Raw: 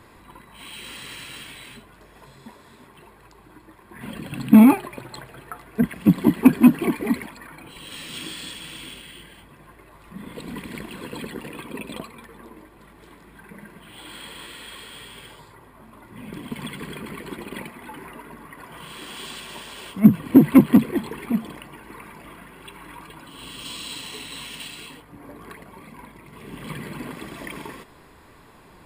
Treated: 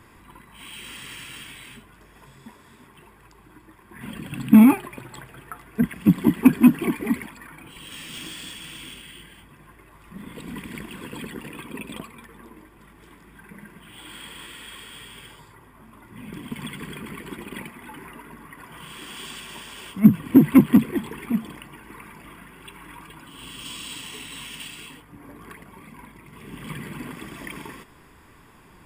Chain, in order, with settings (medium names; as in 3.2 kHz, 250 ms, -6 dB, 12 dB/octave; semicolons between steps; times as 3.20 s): peaking EQ 590 Hz -6.5 dB 1.1 oct; band-stop 4.1 kHz, Q 5.2; 7.38–10.25 s: one-sided clip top -35 dBFS